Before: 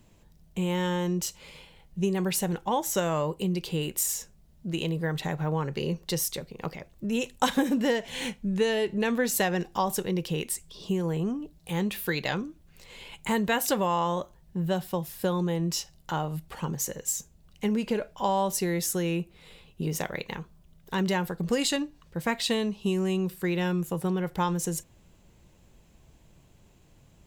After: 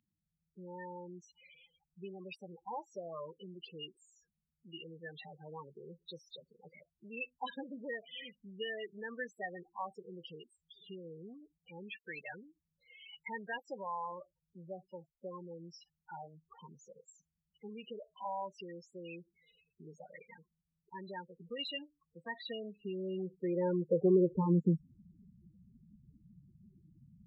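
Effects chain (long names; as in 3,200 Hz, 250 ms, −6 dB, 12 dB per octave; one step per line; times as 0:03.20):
spectral peaks only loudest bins 8
band-pass filter sweep 3,000 Hz → 230 Hz, 0:22.22–0:24.68
head-to-tape spacing loss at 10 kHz 31 dB
level +9 dB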